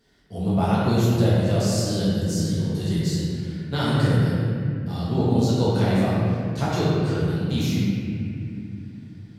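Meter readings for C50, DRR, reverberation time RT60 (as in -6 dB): -4.0 dB, -9.5 dB, 2.7 s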